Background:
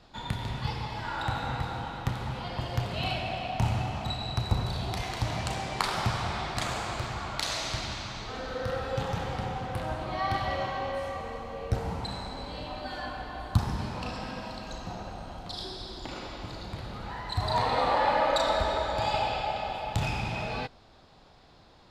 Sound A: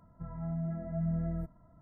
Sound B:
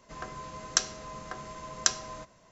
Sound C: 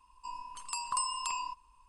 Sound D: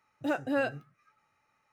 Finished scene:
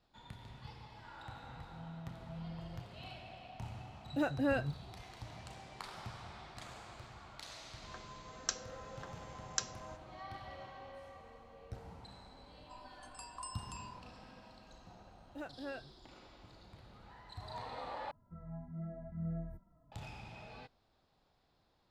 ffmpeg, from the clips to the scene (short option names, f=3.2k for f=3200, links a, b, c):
-filter_complex "[1:a]asplit=2[a][b];[4:a]asplit=2[c][d];[0:a]volume=-18.5dB[e];[c]equalizer=f=150:w=1.3:g=12[f];[b]asplit=2[g][h];[h]adelay=4.3,afreqshift=-2.3[i];[g][i]amix=inputs=2:normalize=1[j];[e]asplit=2[k][l];[k]atrim=end=18.114[m];[j]atrim=end=1.81,asetpts=PTS-STARTPTS,volume=-5dB[n];[l]atrim=start=19.916[o];[a]atrim=end=1.81,asetpts=PTS-STARTPTS,volume=-13.5dB,afade=t=in:d=0.004:c=hsin,afade=t=out:st=1.806:d=0.004:c=hsin,adelay=1360[p];[f]atrim=end=1.72,asetpts=PTS-STARTPTS,volume=-5dB,afade=t=in:d=0.004:c=hsin,afade=t=out:st=1.716:d=0.004:c=hsin,adelay=3920[q];[2:a]atrim=end=2.51,asetpts=PTS-STARTPTS,volume=-11dB,afade=t=in:d=0.004:c=hsin,afade=t=out:st=2.506:d=0.004:c=hsin,adelay=7720[r];[3:a]atrim=end=1.88,asetpts=PTS-STARTPTS,volume=-14dB,afade=t=in:d=0.004:c=hsin,afade=t=out:st=1.876:d=0.004:c=hsin,adelay=12460[s];[d]atrim=end=1.72,asetpts=PTS-STARTPTS,volume=-15.5dB,afade=t=in:d=0.004:c=hsin,afade=t=out:st=1.716:d=0.004:c=hsin,adelay=15110[t];[m][n]acrossfade=d=0.004:c1=hsin:c2=hsin[u];[u][o]acrossfade=d=0.004:c1=hsin:c2=hsin[v];[v][p][q][r][s][t]amix=inputs=6:normalize=0"